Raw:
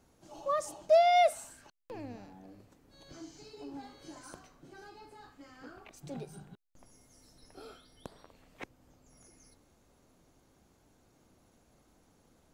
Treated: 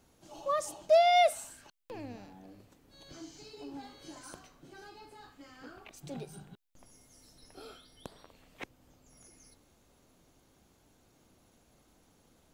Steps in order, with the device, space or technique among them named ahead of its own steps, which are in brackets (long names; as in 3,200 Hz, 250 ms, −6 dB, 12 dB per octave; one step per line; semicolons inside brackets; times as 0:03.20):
presence and air boost (parametric band 3,200 Hz +4 dB 0.99 octaves; high-shelf EQ 9,200 Hz +5.5 dB)